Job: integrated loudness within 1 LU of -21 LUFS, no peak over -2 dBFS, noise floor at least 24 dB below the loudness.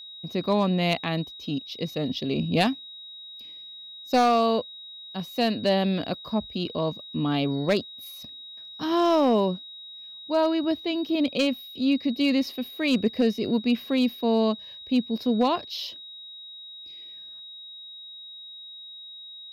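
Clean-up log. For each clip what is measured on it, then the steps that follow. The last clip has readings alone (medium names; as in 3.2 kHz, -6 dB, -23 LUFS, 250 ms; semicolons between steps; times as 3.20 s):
clipped samples 0.3%; clipping level -14.0 dBFS; steady tone 3.8 kHz; tone level -40 dBFS; loudness -25.5 LUFS; peak level -14.0 dBFS; loudness target -21.0 LUFS
-> clip repair -14 dBFS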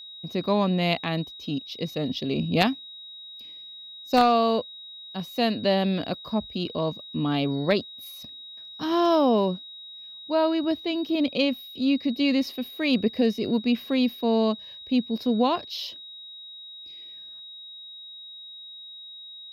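clipped samples 0.0%; steady tone 3.8 kHz; tone level -40 dBFS
-> band-stop 3.8 kHz, Q 30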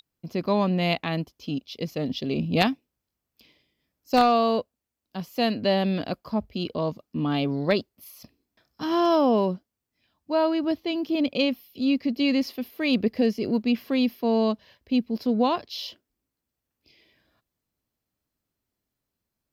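steady tone not found; loudness -25.5 LUFS; peak level -5.0 dBFS; loudness target -21.0 LUFS
-> trim +4.5 dB; peak limiter -2 dBFS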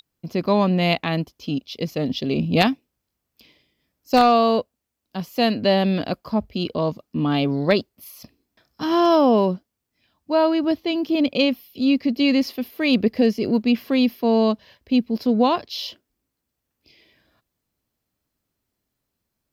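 loudness -21.0 LUFS; peak level -2.0 dBFS; noise floor -80 dBFS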